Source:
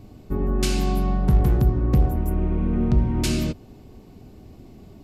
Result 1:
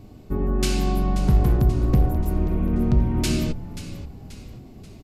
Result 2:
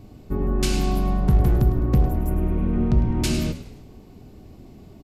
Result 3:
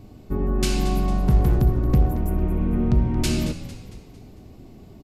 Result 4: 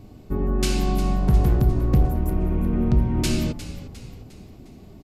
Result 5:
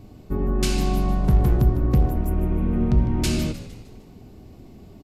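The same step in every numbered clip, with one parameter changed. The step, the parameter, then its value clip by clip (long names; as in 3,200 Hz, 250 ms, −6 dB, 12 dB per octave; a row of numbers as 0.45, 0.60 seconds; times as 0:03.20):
echo with shifted repeats, delay time: 533, 104, 226, 355, 153 milliseconds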